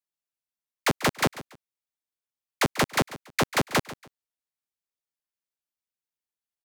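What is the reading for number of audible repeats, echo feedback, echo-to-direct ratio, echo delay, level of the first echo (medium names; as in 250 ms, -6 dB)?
2, 25%, -16.0 dB, 141 ms, -16.5 dB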